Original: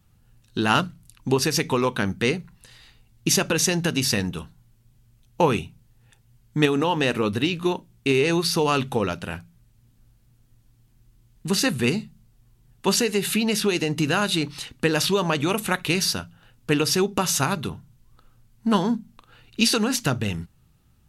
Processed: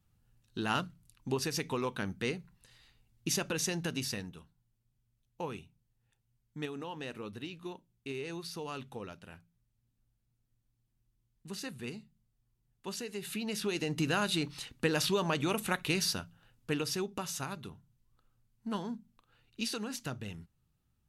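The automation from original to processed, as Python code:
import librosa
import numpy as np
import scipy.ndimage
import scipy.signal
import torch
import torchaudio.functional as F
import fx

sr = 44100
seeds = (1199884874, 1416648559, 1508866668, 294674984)

y = fx.gain(x, sr, db=fx.line((3.96, -12.0), (4.41, -19.5), (12.94, -19.5), (13.99, -8.5), (16.21, -8.5), (17.34, -16.0)))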